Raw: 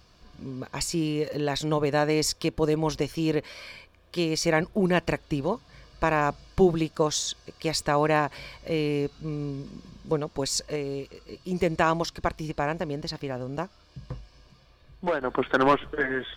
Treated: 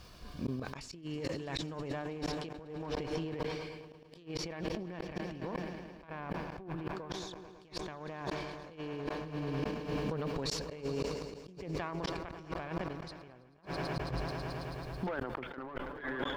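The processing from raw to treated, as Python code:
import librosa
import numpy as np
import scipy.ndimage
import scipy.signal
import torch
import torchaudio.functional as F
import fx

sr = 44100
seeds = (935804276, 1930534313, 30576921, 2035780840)

p1 = fx.self_delay(x, sr, depth_ms=0.12)
p2 = fx.dynamic_eq(p1, sr, hz=520.0, q=0.96, threshold_db=-35.0, ratio=4.0, max_db=-3)
p3 = fx.env_lowpass_down(p2, sr, base_hz=1900.0, full_db=-21.0)
p4 = p3 + fx.echo_swell(p3, sr, ms=109, loudest=5, wet_db=-17, dry=0)
p5 = fx.dmg_noise_colour(p4, sr, seeds[0], colour='blue', level_db=-68.0)
p6 = fx.over_compress(p5, sr, threshold_db=-35.0, ratio=-1.0)
p7 = fx.high_shelf(p6, sr, hz=12000.0, db=-11.5)
p8 = fx.gate_flip(p7, sr, shuts_db=-23.0, range_db=-34)
p9 = fx.sustainer(p8, sr, db_per_s=37.0)
y = p9 * 10.0 ** (-2.0 / 20.0)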